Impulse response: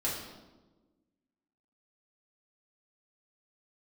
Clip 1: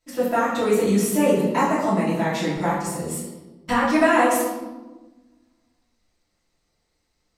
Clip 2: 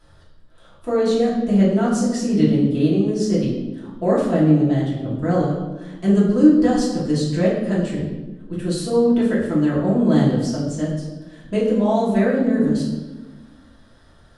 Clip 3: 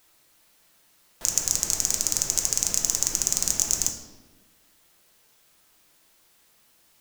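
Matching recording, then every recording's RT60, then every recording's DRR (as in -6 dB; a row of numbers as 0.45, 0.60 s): 2; 1.2, 1.2, 1.2 s; -11.0, -7.0, 3.0 dB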